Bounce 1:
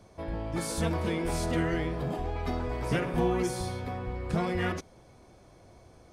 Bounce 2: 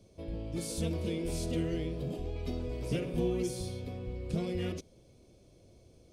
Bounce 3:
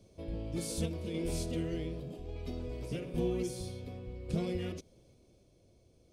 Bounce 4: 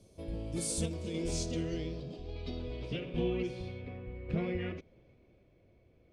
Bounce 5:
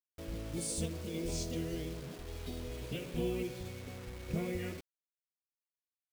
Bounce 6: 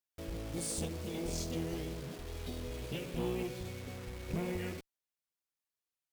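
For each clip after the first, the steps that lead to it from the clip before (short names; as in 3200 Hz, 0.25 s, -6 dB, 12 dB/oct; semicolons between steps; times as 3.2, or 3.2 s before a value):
band shelf 1200 Hz -14 dB; gain -3.5 dB
random-step tremolo
low-pass sweep 11000 Hz -> 2100 Hz, 0.21–4.01
bit-crush 8-bit; gain -2.5 dB
one-sided clip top -39 dBFS; gain +1.5 dB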